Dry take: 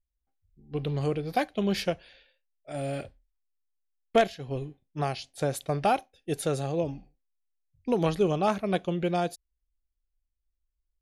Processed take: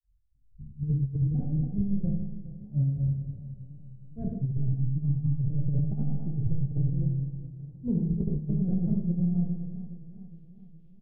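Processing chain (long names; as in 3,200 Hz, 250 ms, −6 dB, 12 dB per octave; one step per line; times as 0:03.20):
stylus tracing distortion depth 0.059 ms
low-pass filter sweep 120 Hz → 3,100 Hz, 0:09.41–0:10.20
repeating echo 165 ms, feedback 37%, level −3 dB
granular cloud 232 ms, grains 4.1 per second, pitch spread up and down by 0 semitones
gain on a spectral selection 0:04.71–0:05.34, 320–820 Hz −28 dB
four-comb reverb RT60 0.72 s, combs from 26 ms, DRR −1 dB
compressor whose output falls as the input rises −35 dBFS, ratio −0.5
low-shelf EQ 370 Hz +12 dB
feedback echo with a swinging delay time 414 ms, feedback 54%, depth 71 cents, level −15 dB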